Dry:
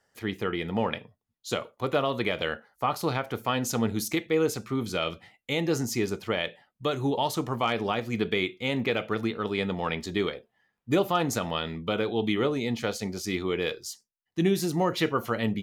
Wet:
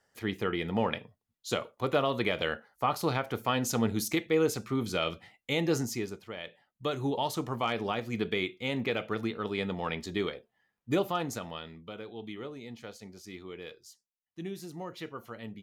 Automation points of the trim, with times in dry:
5.77 s -1.5 dB
6.30 s -13.5 dB
6.87 s -4 dB
10.98 s -4 dB
11.93 s -15 dB

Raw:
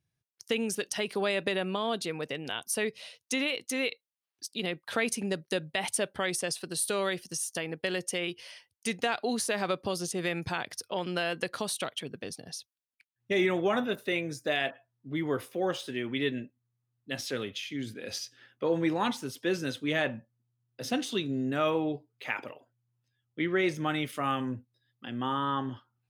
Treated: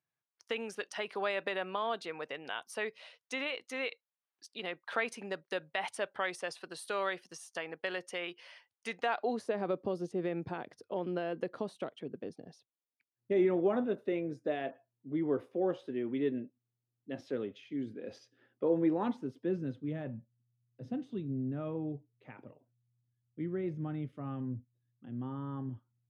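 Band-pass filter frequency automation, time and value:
band-pass filter, Q 0.87
8.98 s 1.1 kHz
9.60 s 340 Hz
19.04 s 340 Hz
19.94 s 120 Hz

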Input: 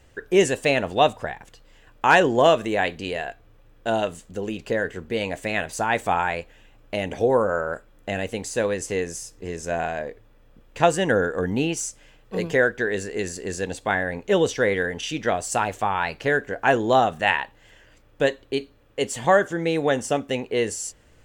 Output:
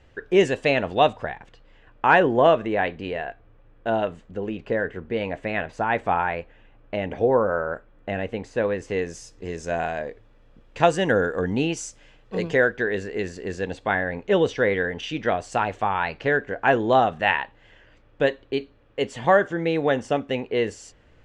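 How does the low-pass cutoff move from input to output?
1.12 s 4 kHz
2.20 s 2.3 kHz
8.71 s 2.3 kHz
9.30 s 5.7 kHz
12.42 s 5.7 kHz
12.96 s 3.5 kHz

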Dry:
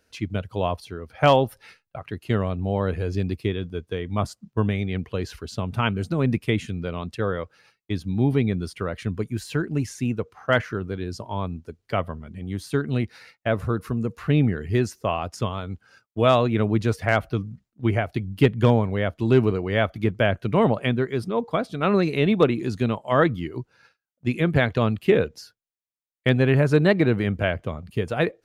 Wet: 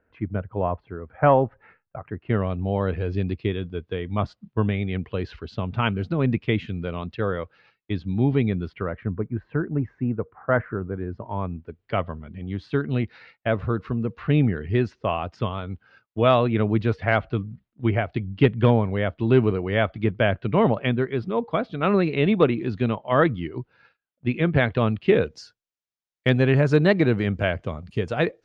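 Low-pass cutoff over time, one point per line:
low-pass 24 dB/octave
2.13 s 1.8 kHz
2.54 s 3.8 kHz
8.55 s 3.8 kHz
9.09 s 1.6 kHz
10.94 s 1.6 kHz
11.98 s 3.7 kHz
24.95 s 3.7 kHz
25.36 s 6.9 kHz

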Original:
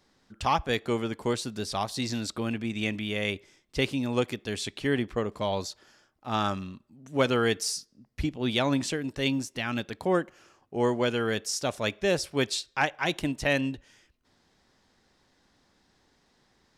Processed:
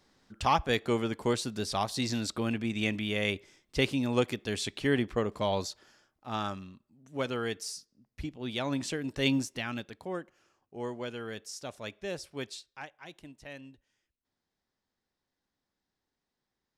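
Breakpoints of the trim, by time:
5.60 s -0.5 dB
6.74 s -8.5 dB
8.50 s -8.5 dB
9.36 s +1 dB
10.06 s -11.5 dB
12.47 s -11.5 dB
12.95 s -20 dB

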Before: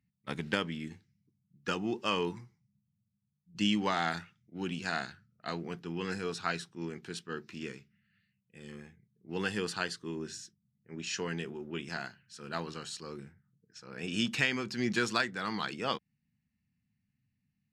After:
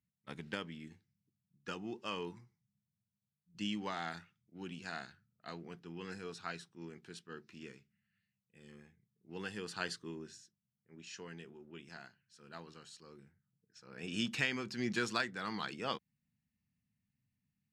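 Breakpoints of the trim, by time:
9.65 s -9.5 dB
9.91 s -2.5 dB
10.44 s -13 dB
13.21 s -13 dB
14.14 s -5 dB

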